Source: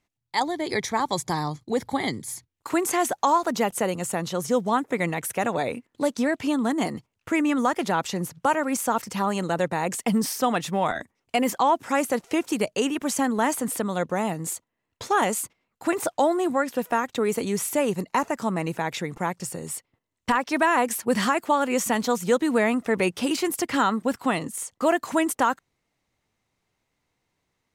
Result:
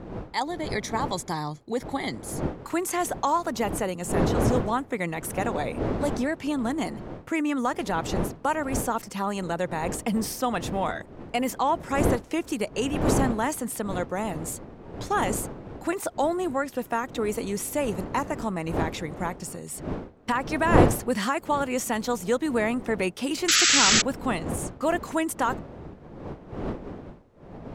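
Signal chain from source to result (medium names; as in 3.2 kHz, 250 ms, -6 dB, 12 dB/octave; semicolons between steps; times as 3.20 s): wind noise 420 Hz -29 dBFS; painted sound noise, 23.48–24.02 s, 1.2–7.9 kHz -16 dBFS; trim -3.5 dB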